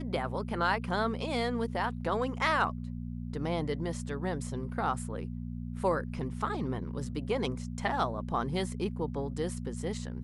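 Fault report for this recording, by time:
mains hum 60 Hz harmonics 4 −38 dBFS

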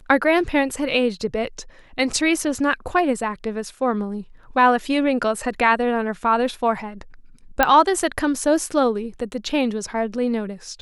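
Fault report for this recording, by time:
0:07.63: click −2 dBFS

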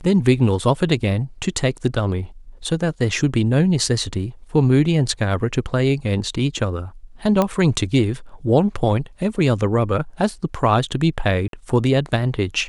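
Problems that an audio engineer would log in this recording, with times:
0:07.42: click −6 dBFS
0:11.48–0:11.53: drop-out 52 ms

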